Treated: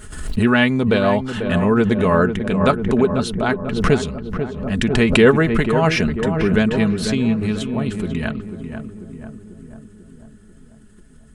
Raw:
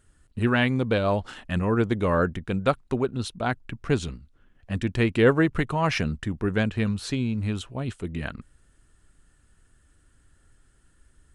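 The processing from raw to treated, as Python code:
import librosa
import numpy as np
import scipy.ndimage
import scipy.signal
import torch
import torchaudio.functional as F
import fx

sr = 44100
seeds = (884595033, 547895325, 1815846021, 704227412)

p1 = x + 0.47 * np.pad(x, (int(4.7 * sr / 1000.0), 0))[:len(x)]
p2 = p1 + fx.echo_filtered(p1, sr, ms=492, feedback_pct=61, hz=1400.0, wet_db=-8.0, dry=0)
p3 = fx.pre_swell(p2, sr, db_per_s=58.0)
y = p3 * 10.0 ** (5.5 / 20.0)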